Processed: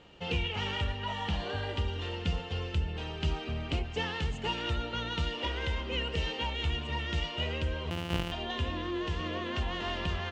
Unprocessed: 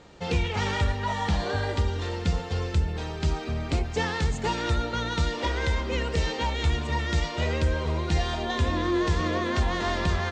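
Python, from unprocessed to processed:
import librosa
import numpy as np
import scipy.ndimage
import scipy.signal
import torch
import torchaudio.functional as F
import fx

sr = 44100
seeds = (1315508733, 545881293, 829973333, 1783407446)

y = fx.sample_sort(x, sr, block=256, at=(7.9, 8.32))
y = fx.high_shelf(y, sr, hz=6000.0, db=-10.5)
y = fx.rider(y, sr, range_db=10, speed_s=0.5)
y = fx.peak_eq(y, sr, hz=2900.0, db=15.0, octaves=0.33)
y = F.gain(torch.from_numpy(y), -7.5).numpy()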